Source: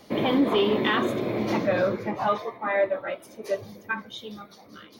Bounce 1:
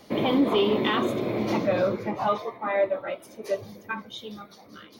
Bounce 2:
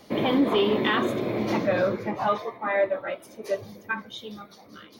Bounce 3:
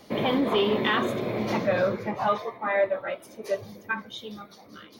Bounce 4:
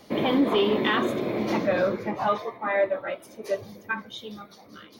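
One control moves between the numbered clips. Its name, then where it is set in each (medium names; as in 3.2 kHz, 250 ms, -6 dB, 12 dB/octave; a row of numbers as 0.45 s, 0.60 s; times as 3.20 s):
dynamic bell, frequency: 1.7 kHz, 6.3 kHz, 310 Hz, 110 Hz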